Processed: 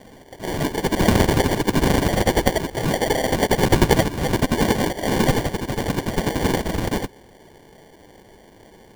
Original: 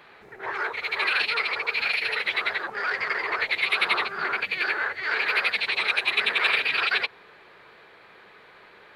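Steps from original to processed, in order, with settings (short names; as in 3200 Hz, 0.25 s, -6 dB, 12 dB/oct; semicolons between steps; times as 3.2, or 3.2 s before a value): tilt +4 dB/oct, from 5.31 s -2 dB/oct; sample-and-hold 34×; gain +3.5 dB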